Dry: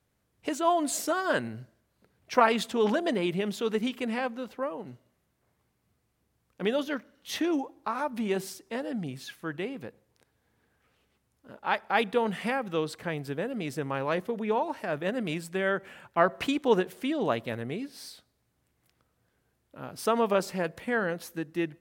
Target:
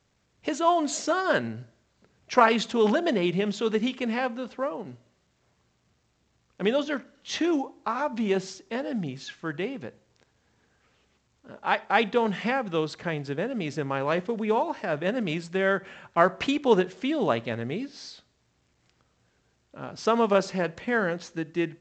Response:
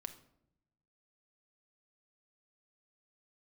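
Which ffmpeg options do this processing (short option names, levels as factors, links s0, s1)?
-filter_complex "[0:a]asplit=2[s0][s1];[1:a]atrim=start_sample=2205,atrim=end_sample=4410[s2];[s1][s2]afir=irnorm=-1:irlink=0,volume=0.668[s3];[s0][s3]amix=inputs=2:normalize=0" -ar 16000 -c:a pcm_alaw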